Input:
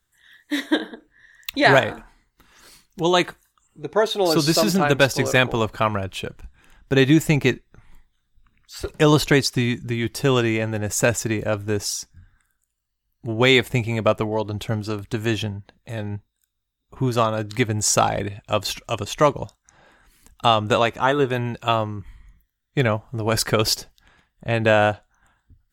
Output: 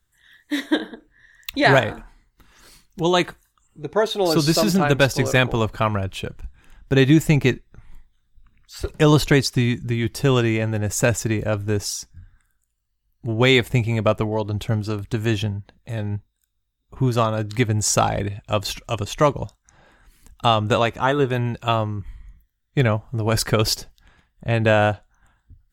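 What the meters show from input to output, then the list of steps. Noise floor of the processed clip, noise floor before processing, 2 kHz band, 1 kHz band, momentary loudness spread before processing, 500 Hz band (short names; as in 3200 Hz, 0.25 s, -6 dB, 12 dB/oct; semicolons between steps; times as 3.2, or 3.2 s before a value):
-71 dBFS, -75 dBFS, -1.0 dB, -1.0 dB, 14 LU, -0.5 dB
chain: low shelf 150 Hz +7.5 dB; gain -1 dB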